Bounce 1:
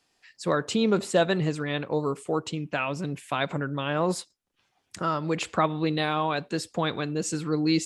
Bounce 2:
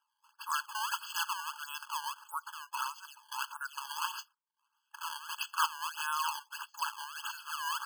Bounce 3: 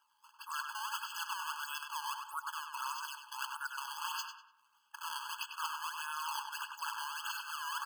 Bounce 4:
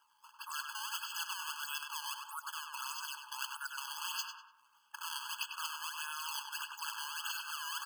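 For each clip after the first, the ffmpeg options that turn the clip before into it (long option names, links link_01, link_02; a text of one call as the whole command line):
ffmpeg -i in.wav -af "acrusher=samples=19:mix=1:aa=0.000001:lfo=1:lforange=30.4:lforate=1.6,afftfilt=real='re*eq(mod(floor(b*sr/1024/860),2),1)':imag='im*eq(mod(floor(b*sr/1024/860),2),1)':win_size=1024:overlap=0.75,volume=-2.5dB" out.wav
ffmpeg -i in.wav -filter_complex "[0:a]areverse,acompressor=threshold=-45dB:ratio=6,areverse,asplit=2[link_01][link_02];[link_02]adelay=98,lowpass=frequency=3000:poles=1,volume=-4dB,asplit=2[link_03][link_04];[link_04]adelay=98,lowpass=frequency=3000:poles=1,volume=0.43,asplit=2[link_05][link_06];[link_06]adelay=98,lowpass=frequency=3000:poles=1,volume=0.43,asplit=2[link_07][link_08];[link_08]adelay=98,lowpass=frequency=3000:poles=1,volume=0.43,asplit=2[link_09][link_10];[link_10]adelay=98,lowpass=frequency=3000:poles=1,volume=0.43[link_11];[link_01][link_03][link_05][link_07][link_09][link_11]amix=inputs=6:normalize=0,volume=7dB" out.wav
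ffmpeg -i in.wav -filter_complex "[0:a]bandreject=frequency=3900:width=10,acrossover=split=1800[link_01][link_02];[link_01]acompressor=threshold=-49dB:ratio=6[link_03];[link_03][link_02]amix=inputs=2:normalize=0,volume=3dB" out.wav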